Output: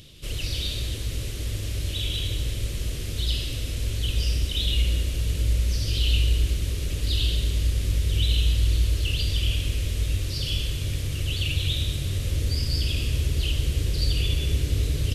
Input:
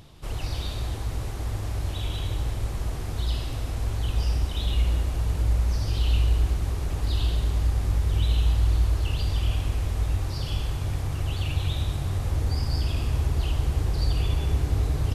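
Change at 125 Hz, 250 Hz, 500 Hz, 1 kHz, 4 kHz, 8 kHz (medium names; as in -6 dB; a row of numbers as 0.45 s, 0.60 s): 0.0 dB, 0.0 dB, -1.0 dB, -11.5 dB, +9.0 dB, +7.0 dB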